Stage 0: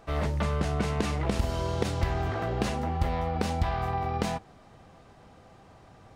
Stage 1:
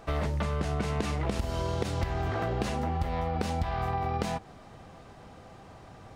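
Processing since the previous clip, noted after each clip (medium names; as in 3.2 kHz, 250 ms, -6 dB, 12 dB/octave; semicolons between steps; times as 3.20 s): compression 4:1, threshold -31 dBFS, peak gain reduction 10 dB; trim +4 dB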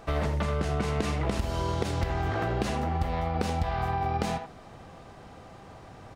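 speakerphone echo 80 ms, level -7 dB; trim +1.5 dB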